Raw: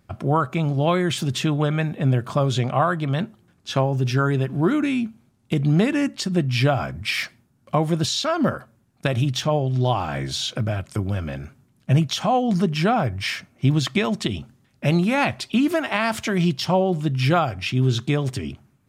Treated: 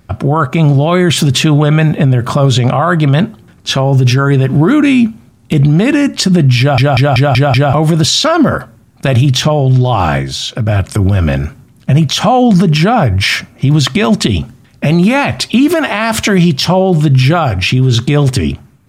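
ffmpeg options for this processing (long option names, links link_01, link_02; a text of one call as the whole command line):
ffmpeg -i in.wav -filter_complex "[0:a]asplit=9[link_01][link_02][link_03][link_04][link_05][link_06][link_07][link_08][link_09];[link_01]atrim=end=6.782[link_10];[link_02]atrim=start=6.588:end=6.782[link_11];[link_03]atrim=start=6.588:end=6.782[link_12];[link_04]atrim=start=6.588:end=6.782[link_13];[link_05]atrim=start=6.588:end=6.782[link_14];[link_06]atrim=start=6.588:end=6.782[link_15];[link_07]atrim=start=7.728:end=10.24,asetpts=PTS-STARTPTS,afade=type=out:start_time=2.372:duration=0.14:silence=0.354813[link_16];[link_08]atrim=start=10.24:end=10.65,asetpts=PTS-STARTPTS,volume=-9dB[link_17];[link_09]atrim=start=10.65,asetpts=PTS-STARTPTS,afade=type=in:duration=0.14:silence=0.354813[link_18];[link_10][link_11]acrossfade=duration=0.004:curve1=hsin:curve2=hsin[link_19];[link_19][link_12]acrossfade=duration=0.004:curve1=hsin:curve2=hsin[link_20];[link_20][link_13]acrossfade=duration=0.004:curve1=hsin:curve2=hsin[link_21];[link_21][link_14]acrossfade=duration=0.004:curve1=hsin:curve2=hsin[link_22];[link_22][link_15]acrossfade=duration=0.004:curve1=hsin:curve2=hsin[link_23];[link_16][link_17][link_18]concat=n=3:v=0:a=1[link_24];[link_23][link_24]acrossfade=duration=0.004:curve1=hsin:curve2=hsin,lowshelf=frequency=67:gain=7.5,dynaudnorm=framelen=280:gausssize=5:maxgain=4.5dB,alimiter=level_in=13.5dB:limit=-1dB:release=50:level=0:latency=1,volume=-1dB" out.wav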